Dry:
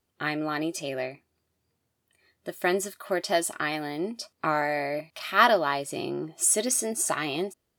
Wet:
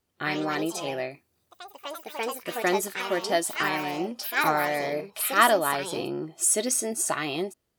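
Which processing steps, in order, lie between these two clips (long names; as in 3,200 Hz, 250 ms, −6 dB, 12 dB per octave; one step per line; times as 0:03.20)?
0:01.10–0:02.56: high-shelf EQ 9,500 Hz → 5,900 Hz +9 dB
delay with pitch and tempo change per echo 94 ms, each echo +4 semitones, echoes 3, each echo −6 dB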